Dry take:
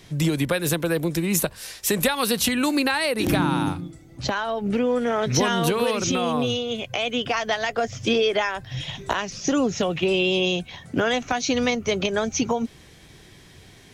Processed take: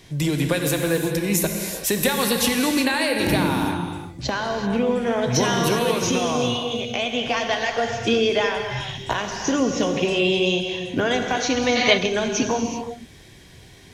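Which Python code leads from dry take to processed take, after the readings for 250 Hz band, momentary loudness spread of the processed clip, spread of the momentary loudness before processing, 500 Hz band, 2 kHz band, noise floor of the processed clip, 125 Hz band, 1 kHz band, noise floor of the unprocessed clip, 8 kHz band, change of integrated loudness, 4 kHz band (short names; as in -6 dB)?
+1.5 dB, 7 LU, 7 LU, +1.5 dB, +2.5 dB, -46 dBFS, +1.0 dB, +1.5 dB, -49 dBFS, +2.0 dB, +1.5 dB, +2.5 dB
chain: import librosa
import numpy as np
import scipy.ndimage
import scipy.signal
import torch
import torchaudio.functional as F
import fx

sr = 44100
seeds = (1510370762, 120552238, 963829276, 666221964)

y = fx.notch(x, sr, hz=1300.0, q=9.8)
y = fx.rev_gated(y, sr, seeds[0], gate_ms=410, shape='flat', drr_db=3.0)
y = fx.spec_box(y, sr, start_s=11.75, length_s=0.22, low_hz=550.0, high_hz=5000.0, gain_db=10)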